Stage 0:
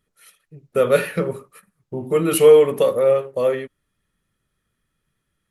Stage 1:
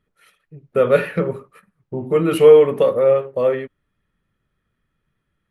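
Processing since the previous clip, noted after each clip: tone controls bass +1 dB, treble -14 dB; trim +1.5 dB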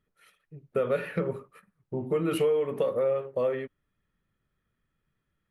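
compression 6:1, threshold -17 dBFS, peak gain reduction 11.5 dB; trim -6 dB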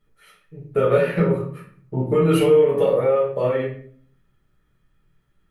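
simulated room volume 55 m³, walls mixed, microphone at 1.3 m; trim +2.5 dB

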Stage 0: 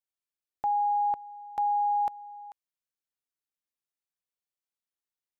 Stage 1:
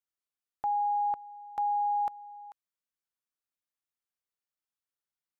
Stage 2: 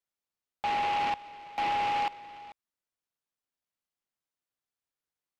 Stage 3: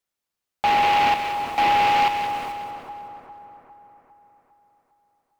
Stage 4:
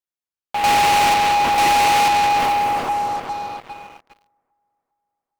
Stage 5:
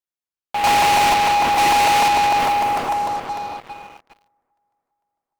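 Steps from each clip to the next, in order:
peaking EQ 1.3 kHz +4.5 dB; trim -3.5 dB
delay time shaken by noise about 1.5 kHz, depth 0.081 ms
in parallel at -5 dB: word length cut 8-bit, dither none; on the sum: two-band feedback delay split 1.4 kHz, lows 404 ms, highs 186 ms, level -7.5 dB; trim +6.5 dB
pre-echo 95 ms -18.5 dB; waveshaping leveller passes 5; trim -2 dB
crackling interface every 0.15 s, samples 128, repeat, from 0.37 s

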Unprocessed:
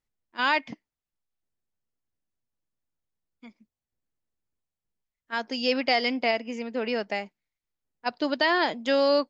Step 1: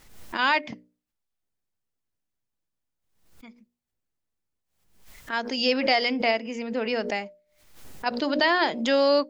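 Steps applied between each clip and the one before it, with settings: hum notches 60/120/180/240/300/360/420/480/540/600 Hz; swell ahead of each attack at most 80 dB/s; trim +1.5 dB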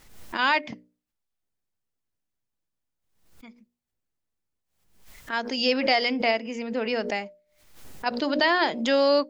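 no audible change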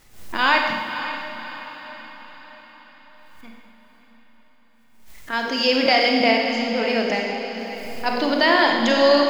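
in parallel at -5.5 dB: crossover distortion -45 dBFS; on the sum: echo that smears into a reverb 553 ms, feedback 52%, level -10 dB; Schroeder reverb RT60 1.6 s, combs from 31 ms, DRR 1.5 dB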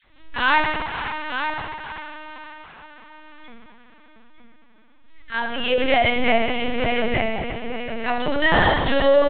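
phase dispersion lows, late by 64 ms, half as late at 930 Hz; on a send: delay 906 ms -8.5 dB; on the sum: LPC vocoder at 8 kHz pitch kept

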